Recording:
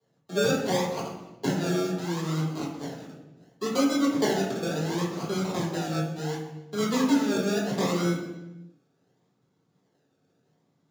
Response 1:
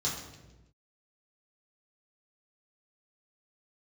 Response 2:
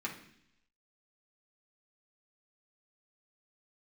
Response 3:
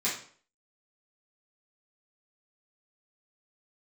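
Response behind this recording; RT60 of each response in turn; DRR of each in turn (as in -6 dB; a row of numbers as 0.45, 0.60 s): 1; 1.1, 0.70, 0.50 s; -6.5, -3.5, -10.5 dB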